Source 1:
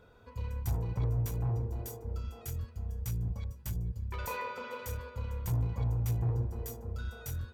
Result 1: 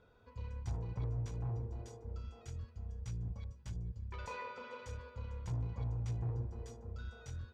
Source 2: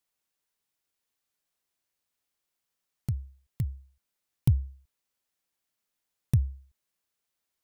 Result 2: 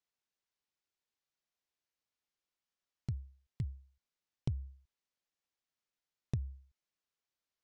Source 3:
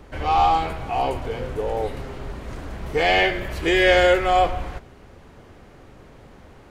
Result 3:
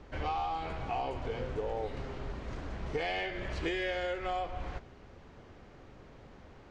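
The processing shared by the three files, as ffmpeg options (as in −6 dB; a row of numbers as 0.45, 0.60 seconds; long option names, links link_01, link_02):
-af "lowpass=frequency=6700:width=0.5412,lowpass=frequency=6700:width=1.3066,acompressor=threshold=-24dB:ratio=20,aeval=exprs='0.211*(cos(1*acos(clip(val(0)/0.211,-1,1)))-cos(1*PI/2))+0.00299*(cos(7*acos(clip(val(0)/0.211,-1,1)))-cos(7*PI/2))':channel_layout=same,volume=-6dB"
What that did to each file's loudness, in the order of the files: −7.0, −11.0, −16.0 LU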